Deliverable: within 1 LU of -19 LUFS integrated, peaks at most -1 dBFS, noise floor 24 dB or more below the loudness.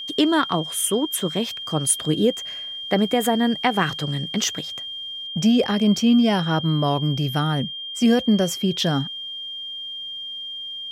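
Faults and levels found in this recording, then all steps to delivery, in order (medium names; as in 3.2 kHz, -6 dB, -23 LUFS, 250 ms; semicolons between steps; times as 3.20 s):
steady tone 3.2 kHz; tone level -30 dBFS; loudness -22.0 LUFS; peak level -6.0 dBFS; loudness target -19.0 LUFS
-> band-stop 3.2 kHz, Q 30; trim +3 dB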